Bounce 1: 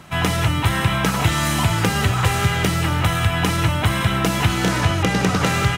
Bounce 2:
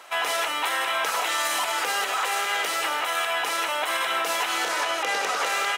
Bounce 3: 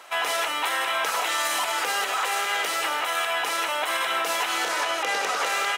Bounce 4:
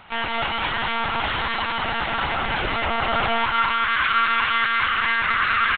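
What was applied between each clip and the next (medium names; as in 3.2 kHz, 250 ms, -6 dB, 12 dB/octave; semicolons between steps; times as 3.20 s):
high-pass 490 Hz 24 dB/octave; peak limiter -16 dBFS, peak gain reduction 10 dB
no audible change
high-pass sweep 83 Hz -> 1.4 kHz, 1.23–3.77 s; multi-tap echo 72/210/233 ms -12.5/-4.5/-10.5 dB; monotone LPC vocoder at 8 kHz 230 Hz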